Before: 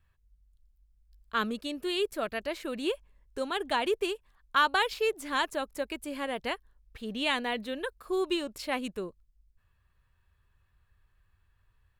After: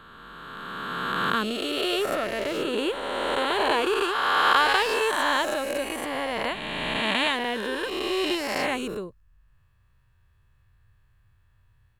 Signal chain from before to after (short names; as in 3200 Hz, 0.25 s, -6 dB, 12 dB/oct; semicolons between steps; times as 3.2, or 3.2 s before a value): spectral swells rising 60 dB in 2.99 s; bell 120 Hz +8.5 dB 0.87 oct